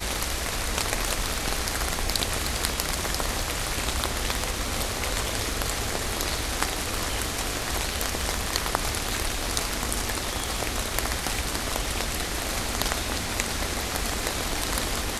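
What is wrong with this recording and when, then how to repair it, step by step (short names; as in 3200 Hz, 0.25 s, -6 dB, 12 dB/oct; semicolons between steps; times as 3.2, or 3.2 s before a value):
crackle 38/s -33 dBFS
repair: de-click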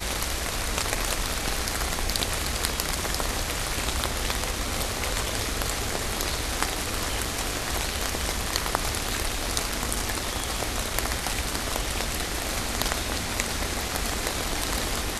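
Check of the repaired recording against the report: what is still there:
none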